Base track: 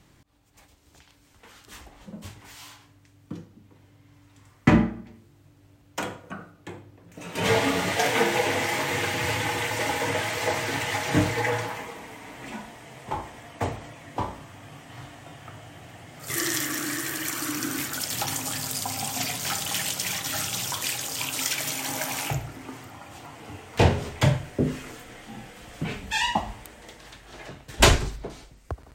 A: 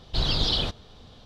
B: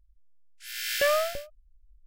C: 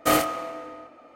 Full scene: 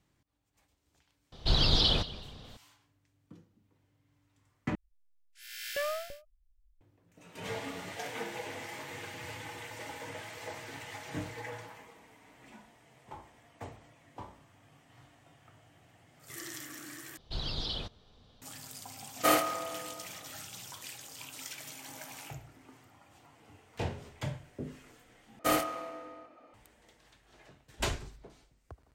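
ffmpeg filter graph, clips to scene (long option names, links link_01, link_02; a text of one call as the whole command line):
ffmpeg -i bed.wav -i cue0.wav -i cue1.wav -i cue2.wav -filter_complex "[1:a]asplit=2[link_01][link_02];[3:a]asplit=2[link_03][link_04];[0:a]volume=-16.5dB[link_05];[link_01]asplit=4[link_06][link_07][link_08][link_09];[link_07]adelay=184,afreqshift=-93,volume=-17.5dB[link_10];[link_08]adelay=368,afreqshift=-186,volume=-27.1dB[link_11];[link_09]adelay=552,afreqshift=-279,volume=-36.8dB[link_12];[link_06][link_10][link_11][link_12]amix=inputs=4:normalize=0[link_13];[link_03]lowshelf=frequency=190:gain=-10[link_14];[link_05]asplit=4[link_15][link_16][link_17][link_18];[link_15]atrim=end=4.754[link_19];[2:a]atrim=end=2.06,asetpts=PTS-STARTPTS,volume=-10dB[link_20];[link_16]atrim=start=6.806:end=17.174[link_21];[link_02]atrim=end=1.25,asetpts=PTS-STARTPTS,volume=-11.5dB[link_22];[link_17]atrim=start=18.416:end=25.394[link_23];[link_04]atrim=end=1.15,asetpts=PTS-STARTPTS,volume=-7.5dB[link_24];[link_18]atrim=start=26.536[link_25];[link_13]atrim=end=1.25,asetpts=PTS-STARTPTS,volume=-1dB,afade=type=in:duration=0.004:curve=hsin,afade=type=out:start_time=1.246:duration=0.004:curve=hsin,adelay=1320[link_26];[link_14]atrim=end=1.15,asetpts=PTS-STARTPTS,volume=-4dB,afade=type=in:duration=0.004:curve=hsin,afade=type=out:start_time=1.146:duration=0.004:curve=hsin,adelay=19180[link_27];[link_19][link_20]acrossfade=duration=0.004:curve1=hsin:curve2=hsin[link_28];[link_28][link_21]acrossfade=duration=0.004:curve1=hsin:curve2=hsin[link_29];[link_29][link_22]acrossfade=duration=0.004:curve1=hsin:curve2=hsin[link_30];[link_30][link_23]acrossfade=duration=0.004:curve1=hsin:curve2=hsin[link_31];[link_31][link_24]acrossfade=duration=0.004:curve1=hsin:curve2=hsin[link_32];[link_32][link_25]acrossfade=duration=0.004:curve1=hsin:curve2=hsin[link_33];[link_33][link_26][link_27]amix=inputs=3:normalize=0" out.wav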